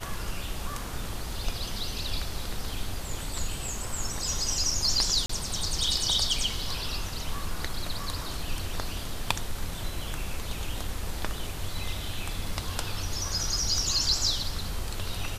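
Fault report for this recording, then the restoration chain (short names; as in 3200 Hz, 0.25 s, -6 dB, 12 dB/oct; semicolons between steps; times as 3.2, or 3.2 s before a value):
5.26–5.29 gap 34 ms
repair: interpolate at 5.26, 34 ms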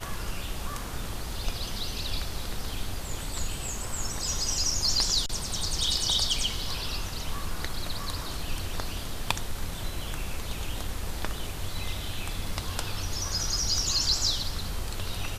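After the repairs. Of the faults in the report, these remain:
none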